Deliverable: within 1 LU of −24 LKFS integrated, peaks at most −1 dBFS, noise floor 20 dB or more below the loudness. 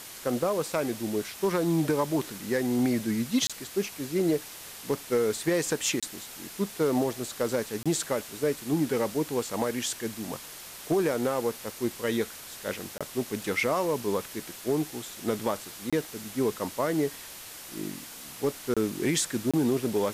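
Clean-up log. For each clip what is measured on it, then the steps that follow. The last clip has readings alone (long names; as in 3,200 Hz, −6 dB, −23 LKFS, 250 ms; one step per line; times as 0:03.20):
number of dropouts 7; longest dropout 26 ms; background noise floor −44 dBFS; target noise floor −50 dBFS; integrated loudness −29.5 LKFS; sample peak −13.0 dBFS; target loudness −24.0 LKFS
→ repair the gap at 0:03.47/0:06.00/0:07.83/0:12.98/0:15.90/0:18.74/0:19.51, 26 ms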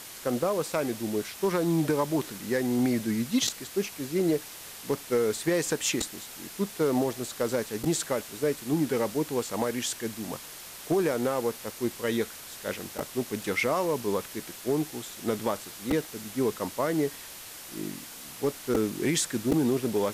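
number of dropouts 0; background noise floor −44 dBFS; target noise floor −49 dBFS
→ broadband denoise 6 dB, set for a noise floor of −44 dBFS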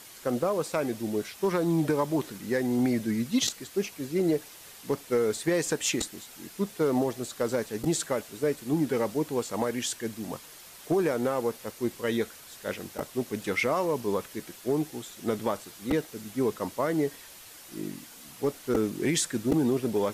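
background noise floor −49 dBFS; target noise floor −50 dBFS
→ broadband denoise 6 dB, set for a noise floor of −49 dBFS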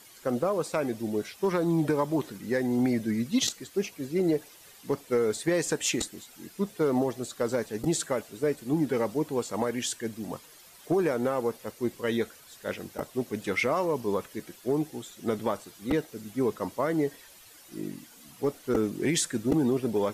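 background noise floor −53 dBFS; integrated loudness −29.5 LKFS; sample peak −12.5 dBFS; target loudness −24.0 LKFS
→ level +5.5 dB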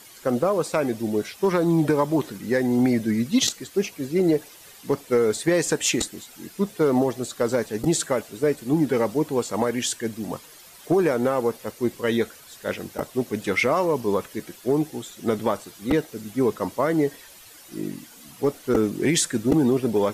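integrated loudness −24.0 LKFS; sample peak −7.0 dBFS; background noise floor −47 dBFS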